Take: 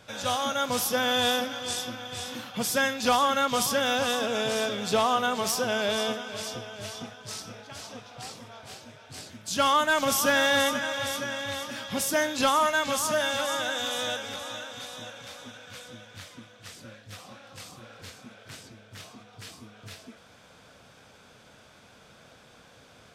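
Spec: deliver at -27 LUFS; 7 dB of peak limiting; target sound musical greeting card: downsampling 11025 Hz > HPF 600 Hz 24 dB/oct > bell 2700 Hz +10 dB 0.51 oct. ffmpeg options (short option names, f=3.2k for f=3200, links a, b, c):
-af "alimiter=limit=-22dB:level=0:latency=1,aresample=11025,aresample=44100,highpass=f=600:w=0.5412,highpass=f=600:w=1.3066,equalizer=f=2.7k:t=o:w=0.51:g=10,volume=3dB"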